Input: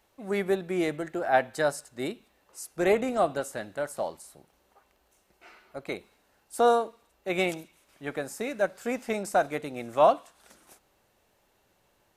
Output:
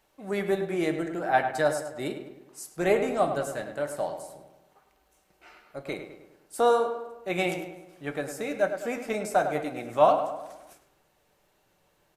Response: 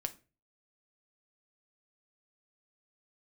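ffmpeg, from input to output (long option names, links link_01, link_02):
-filter_complex "[0:a]asplit=2[link_01][link_02];[link_02]adelay=103,lowpass=frequency=2700:poles=1,volume=-8dB,asplit=2[link_03][link_04];[link_04]adelay=103,lowpass=frequency=2700:poles=1,volume=0.53,asplit=2[link_05][link_06];[link_06]adelay=103,lowpass=frequency=2700:poles=1,volume=0.53,asplit=2[link_07][link_08];[link_08]adelay=103,lowpass=frequency=2700:poles=1,volume=0.53,asplit=2[link_09][link_10];[link_10]adelay=103,lowpass=frequency=2700:poles=1,volume=0.53,asplit=2[link_11][link_12];[link_12]adelay=103,lowpass=frequency=2700:poles=1,volume=0.53[link_13];[link_01][link_03][link_05][link_07][link_09][link_11][link_13]amix=inputs=7:normalize=0[link_14];[1:a]atrim=start_sample=2205[link_15];[link_14][link_15]afir=irnorm=-1:irlink=0"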